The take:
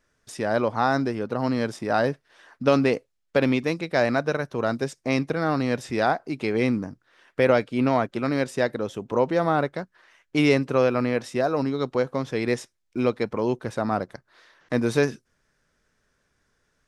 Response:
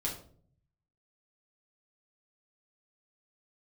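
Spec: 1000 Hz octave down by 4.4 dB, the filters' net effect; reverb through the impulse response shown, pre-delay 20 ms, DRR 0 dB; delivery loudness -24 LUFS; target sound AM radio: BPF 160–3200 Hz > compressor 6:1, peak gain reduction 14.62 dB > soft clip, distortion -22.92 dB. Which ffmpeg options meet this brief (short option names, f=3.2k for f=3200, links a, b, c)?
-filter_complex "[0:a]equalizer=f=1k:t=o:g=-6.5,asplit=2[a][b];[1:a]atrim=start_sample=2205,adelay=20[c];[b][c]afir=irnorm=-1:irlink=0,volume=-3dB[d];[a][d]amix=inputs=2:normalize=0,highpass=160,lowpass=3.2k,acompressor=threshold=-26dB:ratio=6,asoftclip=threshold=-19dB,volume=7.5dB"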